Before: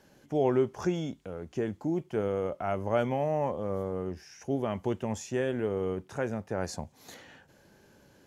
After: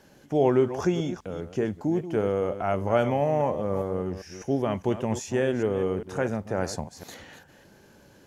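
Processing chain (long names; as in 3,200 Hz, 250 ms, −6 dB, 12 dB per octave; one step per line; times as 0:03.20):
delay that plays each chunk backwards 201 ms, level −11.5 dB
level +4.5 dB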